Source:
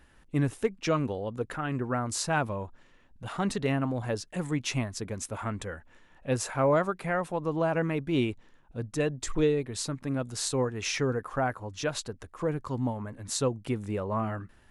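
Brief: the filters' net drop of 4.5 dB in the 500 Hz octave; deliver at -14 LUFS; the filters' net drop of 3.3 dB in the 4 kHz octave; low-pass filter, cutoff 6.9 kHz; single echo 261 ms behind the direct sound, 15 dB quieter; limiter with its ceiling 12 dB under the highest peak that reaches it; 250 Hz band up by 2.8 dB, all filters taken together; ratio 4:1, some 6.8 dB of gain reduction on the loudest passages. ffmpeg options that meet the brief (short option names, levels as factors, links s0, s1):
-af "lowpass=6900,equalizer=f=250:t=o:g=5.5,equalizer=f=500:t=o:g=-7,equalizer=f=4000:t=o:g=-3.5,acompressor=threshold=0.0355:ratio=4,alimiter=level_in=2.11:limit=0.0631:level=0:latency=1,volume=0.473,aecho=1:1:261:0.178,volume=20"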